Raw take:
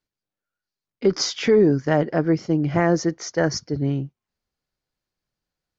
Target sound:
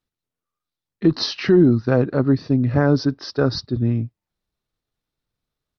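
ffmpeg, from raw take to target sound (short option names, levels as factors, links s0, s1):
-af "asetrate=37084,aresample=44100,atempo=1.18921,lowshelf=f=370:g=4"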